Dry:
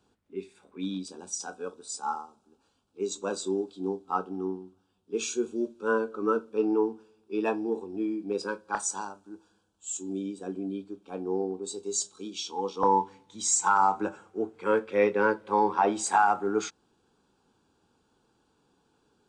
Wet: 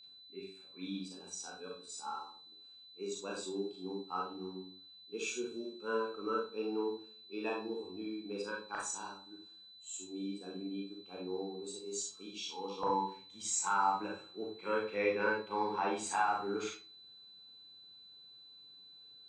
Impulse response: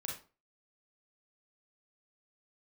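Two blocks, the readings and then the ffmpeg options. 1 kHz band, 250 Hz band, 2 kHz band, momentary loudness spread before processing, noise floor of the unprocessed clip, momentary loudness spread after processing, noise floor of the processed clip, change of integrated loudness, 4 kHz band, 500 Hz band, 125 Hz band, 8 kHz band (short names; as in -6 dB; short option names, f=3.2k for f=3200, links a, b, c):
-9.0 dB, -9.5 dB, -5.5 dB, 14 LU, -71 dBFS, 21 LU, -57 dBFS, -9.0 dB, -2.5 dB, -9.0 dB, -8.5 dB, -9.0 dB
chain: -filter_complex "[0:a]aeval=exprs='val(0)+0.00631*sin(2*PI*4000*n/s)':c=same,equalizer=f=2.5k:t=o:w=0.71:g=7.5[a];[1:a]atrim=start_sample=2205[b];[a][b]afir=irnorm=-1:irlink=0,volume=-8dB"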